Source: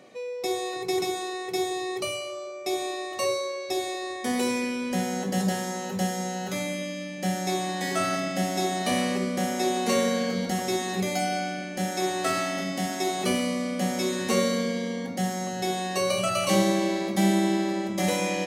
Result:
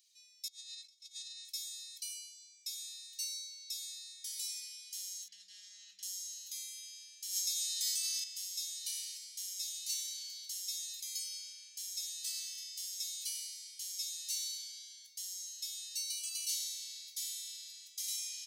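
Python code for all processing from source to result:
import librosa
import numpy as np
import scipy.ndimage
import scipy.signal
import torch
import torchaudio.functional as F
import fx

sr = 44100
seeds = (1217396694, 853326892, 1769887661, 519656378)

y = fx.chain(x, sr, fx.lowpass(hz=5900.0, slope=12),
    fx.peak_eq(hz=260.0, db=8.0, octaves=1.7),
    fx.over_compress(threshold_db=-29.0, ratio=-0.5), at=(0.48, 1.45))
y = fx.chain(y, sr, fx.lowpass(hz=2200.0, slope=12),
    fx.env_flatten(amount_pct=70), at=(5.28, 6.03))
y = fx.chain(y, sr, fx.bass_treble(bass_db=6, treble_db=2),
    fx.env_flatten(amount_pct=100), at=(7.29, 8.24))
y = scipy.signal.sosfilt(scipy.signal.cheby2(4, 70, 1100.0, 'highpass', fs=sr, output='sos'), y)
y = fx.peak_eq(y, sr, hz=8600.0, db=-8.0, octaves=1.7)
y = y * librosa.db_to_amplitude(4.0)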